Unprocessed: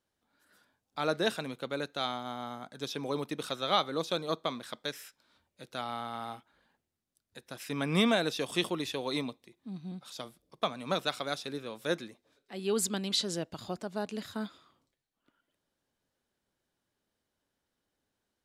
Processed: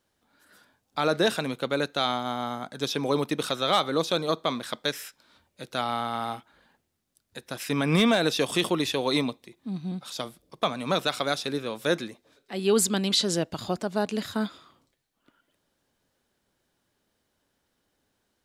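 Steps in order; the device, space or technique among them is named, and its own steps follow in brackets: clipper into limiter (hard clipper -17 dBFS, distortion -26 dB; peak limiter -21 dBFS, peak gain reduction 4 dB); trim +8.5 dB

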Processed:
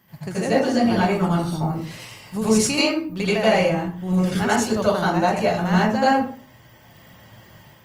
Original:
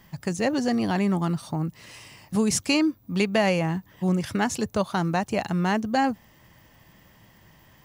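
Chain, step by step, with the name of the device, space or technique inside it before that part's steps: far-field microphone of a smart speaker (reverberation RT60 0.45 s, pre-delay 77 ms, DRR -8.5 dB; high-pass 97 Hz 12 dB/octave; level rider gain up to 4 dB; trim -4.5 dB; Opus 32 kbps 48 kHz)

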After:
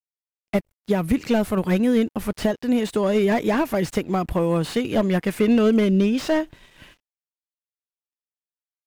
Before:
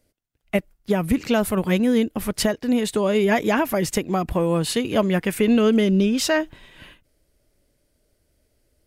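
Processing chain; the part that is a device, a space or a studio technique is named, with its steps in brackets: early transistor amplifier (crossover distortion -53.5 dBFS; slew-rate limiter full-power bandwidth 110 Hz)

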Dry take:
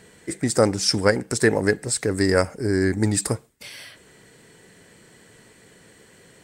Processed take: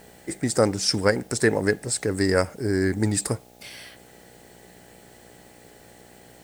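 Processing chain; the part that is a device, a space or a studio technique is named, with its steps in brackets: video cassette with head-switching buzz (mains buzz 60 Hz, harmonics 14, -51 dBFS 0 dB/octave; white noise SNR 32 dB); trim -2 dB

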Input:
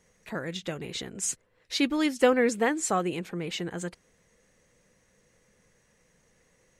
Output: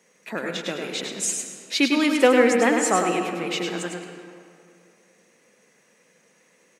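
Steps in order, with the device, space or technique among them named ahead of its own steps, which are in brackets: PA in a hall (high-pass 200 Hz 24 dB/octave; peaking EQ 2.5 kHz +5 dB 0.26 oct; delay 102 ms -5 dB; reverberation RT60 2.4 s, pre-delay 90 ms, DRR 6 dB); trim +4.5 dB

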